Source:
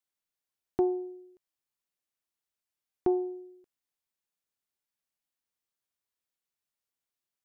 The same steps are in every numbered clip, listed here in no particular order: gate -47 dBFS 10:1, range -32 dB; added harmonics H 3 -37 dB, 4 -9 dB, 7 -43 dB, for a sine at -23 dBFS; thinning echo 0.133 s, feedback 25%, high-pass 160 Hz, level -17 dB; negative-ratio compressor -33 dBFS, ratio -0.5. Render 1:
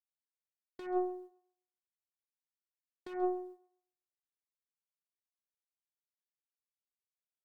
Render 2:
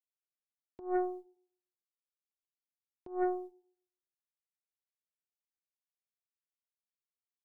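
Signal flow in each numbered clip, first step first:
added harmonics > negative-ratio compressor > gate > thinning echo; gate > negative-ratio compressor > thinning echo > added harmonics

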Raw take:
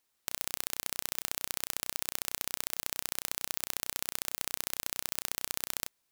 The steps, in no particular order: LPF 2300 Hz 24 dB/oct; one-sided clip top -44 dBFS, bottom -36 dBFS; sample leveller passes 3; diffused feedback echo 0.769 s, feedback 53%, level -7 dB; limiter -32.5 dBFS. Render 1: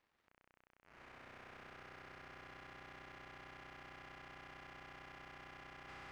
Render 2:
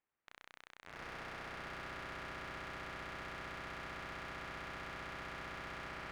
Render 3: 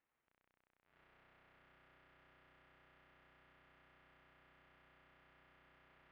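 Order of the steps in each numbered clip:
diffused feedback echo > limiter > one-sided clip > LPF > sample leveller; diffused feedback echo > sample leveller > LPF > one-sided clip > limiter; limiter > diffused feedback echo > sample leveller > one-sided clip > LPF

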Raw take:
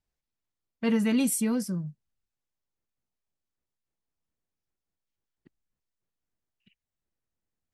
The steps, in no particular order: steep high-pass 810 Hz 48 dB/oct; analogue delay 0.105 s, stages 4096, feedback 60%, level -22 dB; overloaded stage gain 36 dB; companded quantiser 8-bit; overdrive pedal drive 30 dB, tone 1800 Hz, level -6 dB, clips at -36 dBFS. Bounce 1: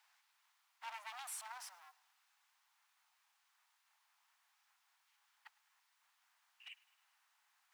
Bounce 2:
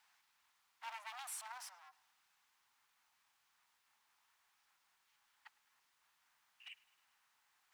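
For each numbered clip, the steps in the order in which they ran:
overdrive pedal > overloaded stage > analogue delay > companded quantiser > steep high-pass; overdrive pedal > overloaded stage > steep high-pass > companded quantiser > analogue delay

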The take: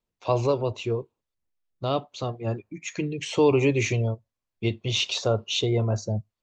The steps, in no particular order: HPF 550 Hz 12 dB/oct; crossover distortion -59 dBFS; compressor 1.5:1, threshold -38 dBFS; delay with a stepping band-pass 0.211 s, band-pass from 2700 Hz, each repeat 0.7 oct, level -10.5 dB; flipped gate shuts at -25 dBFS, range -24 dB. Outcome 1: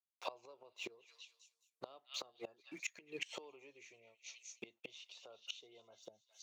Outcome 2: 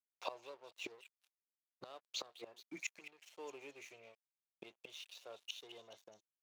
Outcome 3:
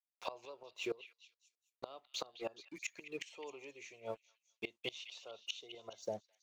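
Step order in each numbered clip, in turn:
crossover distortion > delay with a stepping band-pass > compressor > flipped gate > HPF; flipped gate > delay with a stepping band-pass > crossover distortion > HPF > compressor; HPF > crossover distortion > flipped gate > compressor > delay with a stepping band-pass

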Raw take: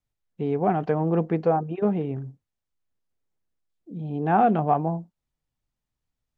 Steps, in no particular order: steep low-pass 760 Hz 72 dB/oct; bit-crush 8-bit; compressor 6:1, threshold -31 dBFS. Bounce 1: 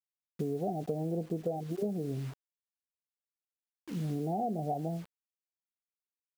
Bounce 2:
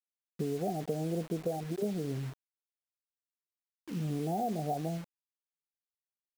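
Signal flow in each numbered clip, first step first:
steep low-pass > bit-crush > compressor; steep low-pass > compressor > bit-crush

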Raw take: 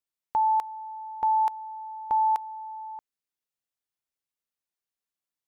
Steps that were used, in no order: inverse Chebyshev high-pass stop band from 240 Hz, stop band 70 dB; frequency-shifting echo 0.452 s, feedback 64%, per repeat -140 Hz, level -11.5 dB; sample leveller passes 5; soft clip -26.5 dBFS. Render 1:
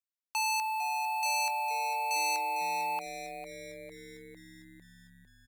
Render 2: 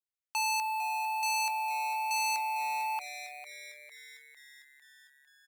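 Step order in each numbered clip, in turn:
sample leveller > inverse Chebyshev high-pass > soft clip > frequency-shifting echo; sample leveller > frequency-shifting echo > inverse Chebyshev high-pass > soft clip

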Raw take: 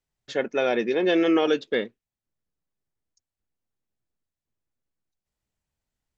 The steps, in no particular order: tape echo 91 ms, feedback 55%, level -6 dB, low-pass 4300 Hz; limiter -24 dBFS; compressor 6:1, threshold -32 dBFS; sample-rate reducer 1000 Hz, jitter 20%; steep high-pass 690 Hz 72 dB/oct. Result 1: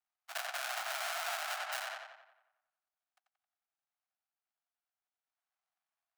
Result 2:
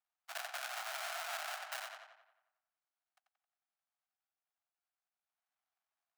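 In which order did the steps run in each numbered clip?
sample-rate reducer > tape echo > limiter > steep high-pass > compressor; limiter > sample-rate reducer > tape echo > compressor > steep high-pass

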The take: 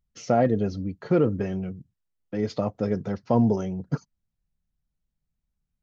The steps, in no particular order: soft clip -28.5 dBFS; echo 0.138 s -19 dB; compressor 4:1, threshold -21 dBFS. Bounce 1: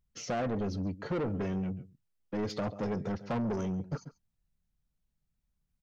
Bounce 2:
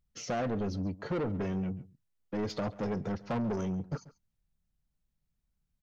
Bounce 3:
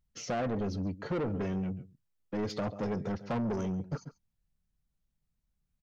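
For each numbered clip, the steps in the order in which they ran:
compressor > echo > soft clip; compressor > soft clip > echo; echo > compressor > soft clip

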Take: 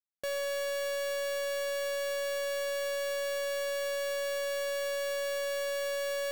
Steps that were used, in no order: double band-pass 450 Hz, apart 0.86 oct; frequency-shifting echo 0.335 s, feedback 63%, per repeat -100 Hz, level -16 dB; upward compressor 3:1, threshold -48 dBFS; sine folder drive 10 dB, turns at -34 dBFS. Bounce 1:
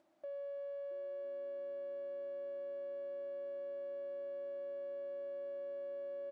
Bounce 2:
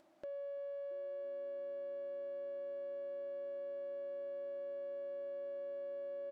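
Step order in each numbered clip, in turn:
upward compressor > sine folder > frequency-shifting echo > double band-pass; sine folder > frequency-shifting echo > double band-pass > upward compressor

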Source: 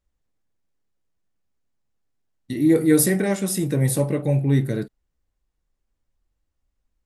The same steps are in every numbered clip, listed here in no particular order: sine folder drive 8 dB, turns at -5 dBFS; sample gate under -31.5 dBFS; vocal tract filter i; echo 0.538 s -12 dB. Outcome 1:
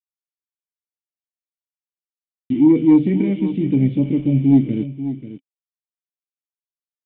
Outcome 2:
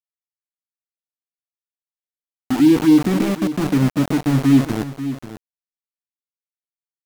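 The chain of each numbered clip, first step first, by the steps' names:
sample gate > vocal tract filter > sine folder > echo; vocal tract filter > sample gate > sine folder > echo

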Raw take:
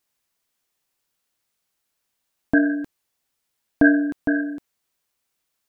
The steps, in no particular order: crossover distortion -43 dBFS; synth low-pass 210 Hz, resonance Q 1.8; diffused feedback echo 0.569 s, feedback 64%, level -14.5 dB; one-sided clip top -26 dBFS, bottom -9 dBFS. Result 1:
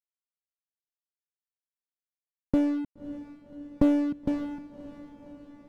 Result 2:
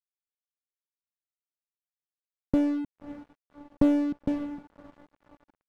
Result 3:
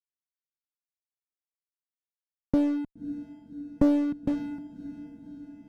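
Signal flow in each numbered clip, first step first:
synth low-pass > one-sided clip > crossover distortion > diffused feedback echo; synth low-pass > one-sided clip > diffused feedback echo > crossover distortion; synth low-pass > crossover distortion > diffused feedback echo > one-sided clip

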